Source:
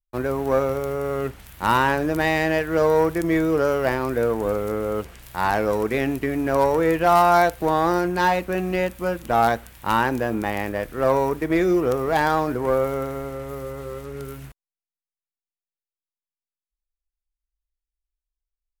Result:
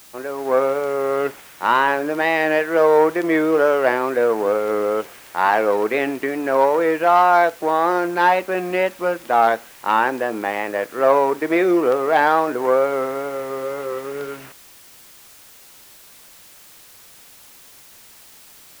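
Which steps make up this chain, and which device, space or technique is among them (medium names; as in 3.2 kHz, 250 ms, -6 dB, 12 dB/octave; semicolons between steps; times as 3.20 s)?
dictaphone (band-pass 370–3200 Hz; level rider; wow and flutter; white noise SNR 26 dB); trim -2.5 dB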